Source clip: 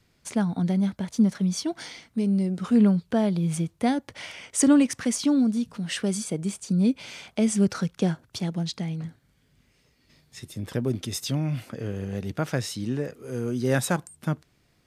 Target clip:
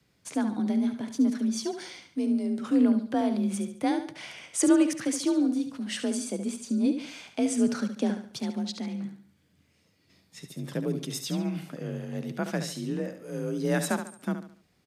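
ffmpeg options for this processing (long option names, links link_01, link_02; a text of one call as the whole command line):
ffmpeg -i in.wav -af "afreqshift=39,aecho=1:1:71|142|213|284:0.355|0.131|0.0486|0.018,volume=-3.5dB" out.wav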